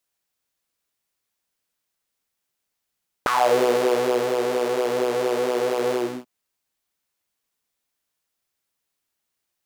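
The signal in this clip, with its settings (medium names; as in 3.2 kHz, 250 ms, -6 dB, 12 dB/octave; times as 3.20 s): synth patch with pulse-width modulation B2, filter highpass, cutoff 240 Hz, Q 5.7, filter envelope 2.5 oct, filter decay 0.29 s, filter sustain 35%, attack 1.3 ms, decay 1.06 s, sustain -5.5 dB, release 0.31 s, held 2.68 s, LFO 4.3 Hz, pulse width 23%, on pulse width 17%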